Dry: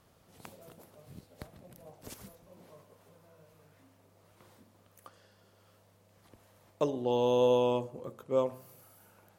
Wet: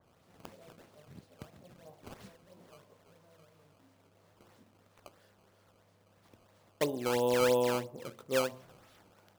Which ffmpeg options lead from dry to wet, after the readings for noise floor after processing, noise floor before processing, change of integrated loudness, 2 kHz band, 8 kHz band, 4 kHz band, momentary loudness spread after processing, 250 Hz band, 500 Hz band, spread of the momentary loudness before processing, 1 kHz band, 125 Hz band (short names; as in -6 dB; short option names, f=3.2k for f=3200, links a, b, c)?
-67 dBFS, -65 dBFS, -1.5 dB, +11.5 dB, +9.0 dB, +3.0 dB, 11 LU, -1.5 dB, -2.0 dB, 22 LU, -1.0 dB, -2.0 dB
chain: -af "highpass=81,acrusher=samples=14:mix=1:aa=0.000001:lfo=1:lforange=22.4:lforate=3,adynamicequalizer=threshold=0.00447:dfrequency=2300:dqfactor=0.7:tfrequency=2300:tqfactor=0.7:attack=5:release=100:ratio=0.375:range=1.5:mode=cutabove:tftype=highshelf,volume=-1.5dB"